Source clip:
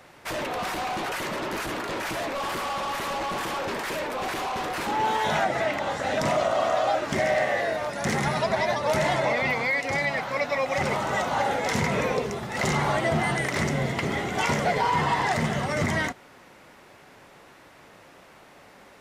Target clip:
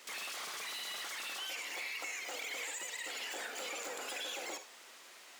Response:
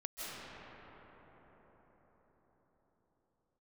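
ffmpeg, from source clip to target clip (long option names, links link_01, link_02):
-filter_complex "[0:a]acompressor=threshold=-41dB:ratio=2.5,highpass=frequency=62:width=0.5412,highpass=frequency=62:width=1.3066,asplit=2[link_01][link_02];[1:a]atrim=start_sample=2205,afade=type=out:start_time=0.37:duration=0.01,atrim=end_sample=16758[link_03];[link_02][link_03]afir=irnorm=-1:irlink=0,volume=-4dB[link_04];[link_01][link_04]amix=inputs=2:normalize=0,asetrate=155232,aresample=44100,volume=-7.5dB"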